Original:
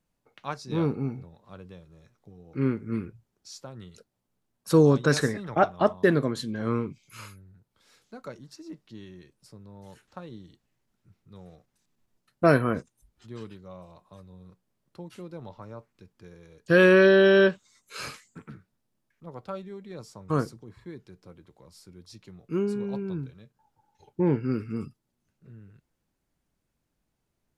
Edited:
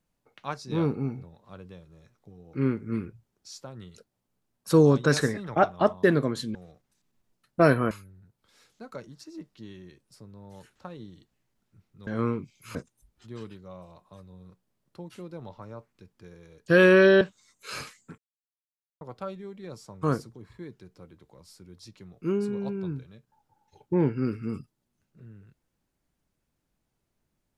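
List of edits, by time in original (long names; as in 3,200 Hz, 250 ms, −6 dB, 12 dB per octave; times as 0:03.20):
0:06.55–0:07.23: swap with 0:11.39–0:12.75
0:17.21–0:17.48: remove
0:18.45–0:19.28: silence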